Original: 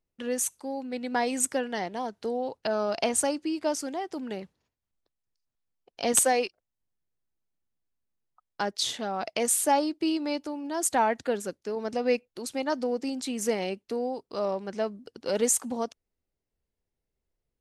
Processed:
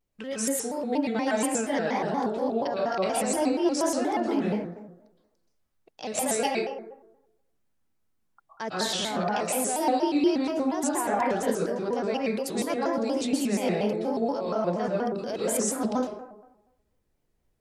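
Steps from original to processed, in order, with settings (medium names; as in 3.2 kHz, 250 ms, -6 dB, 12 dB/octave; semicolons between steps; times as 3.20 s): reverse; compression 6:1, threshold -33 dBFS, peak gain reduction 15 dB; reverse; plate-style reverb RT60 0.98 s, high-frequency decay 0.35×, pre-delay 105 ms, DRR -5 dB; vibrato with a chosen wave square 4.2 Hz, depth 160 cents; trim +3.5 dB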